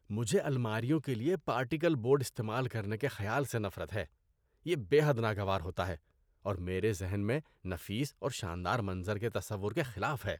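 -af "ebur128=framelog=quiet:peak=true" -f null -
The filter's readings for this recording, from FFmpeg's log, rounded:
Integrated loudness:
  I:         -34.2 LUFS
  Threshold: -44.4 LUFS
Loudness range:
  LRA:         3.3 LU
  Threshold: -54.7 LUFS
  LRA low:   -36.5 LUFS
  LRA high:  -33.3 LUFS
True peak:
  Peak:      -16.8 dBFS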